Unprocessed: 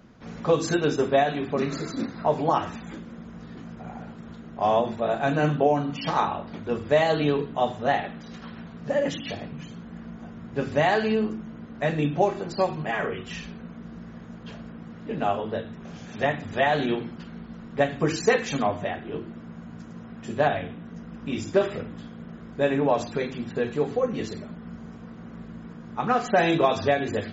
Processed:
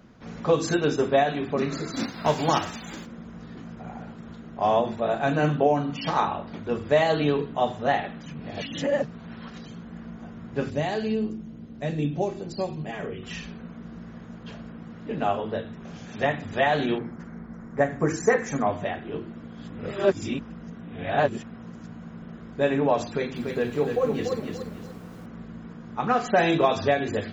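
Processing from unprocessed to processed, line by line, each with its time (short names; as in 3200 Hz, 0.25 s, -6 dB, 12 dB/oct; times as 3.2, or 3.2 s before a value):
1.93–3.05 spectral whitening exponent 0.6
8.26–9.66 reverse
10.7–13.23 bell 1300 Hz -11.5 dB 2.3 oct
16.98–18.67 band shelf 3500 Hz -15 dB 1.1 oct
19.44–22.22 reverse
23.07–25.26 lo-fi delay 0.289 s, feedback 35%, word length 9-bit, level -5 dB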